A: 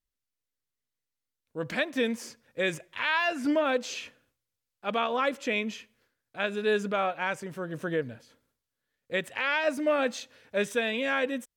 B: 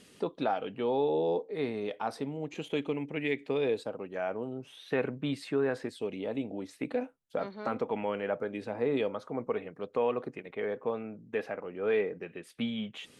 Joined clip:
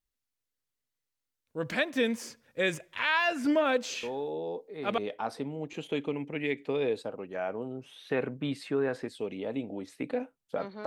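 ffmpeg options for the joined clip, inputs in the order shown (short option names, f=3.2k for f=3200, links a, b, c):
-filter_complex "[1:a]asplit=2[a][b];[0:a]apad=whole_dur=10.86,atrim=end=10.86,atrim=end=4.982[c];[b]atrim=start=1.788:end=7.67[d];[a]atrim=start=0.84:end=1.79,asetpts=PTS-STARTPTS,volume=-6.5dB,afade=t=in:d=0.004:c=hsin,afade=t=out:st=0.946:d=0.004:c=hsin,adelay=4030[e];[c][d]acrossfade=d=0.004:c1=hsin:c2=hsin[f];[f][e]amix=inputs=2:normalize=0"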